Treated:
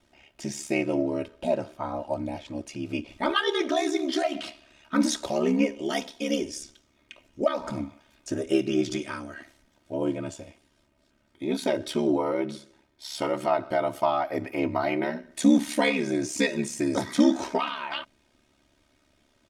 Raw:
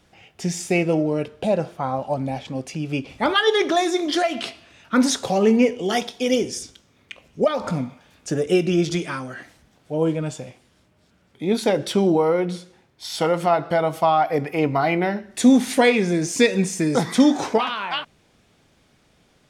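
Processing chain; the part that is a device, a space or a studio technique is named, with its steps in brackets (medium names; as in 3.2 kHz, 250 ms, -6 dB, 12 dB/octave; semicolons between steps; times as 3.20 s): ring-modulated robot voice (ring modulator 35 Hz; comb 3.2 ms, depth 60%); trim -4.5 dB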